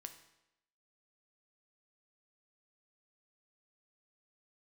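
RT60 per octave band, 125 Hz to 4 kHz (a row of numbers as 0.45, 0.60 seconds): 0.80, 0.85, 0.90, 0.85, 0.85, 0.80 seconds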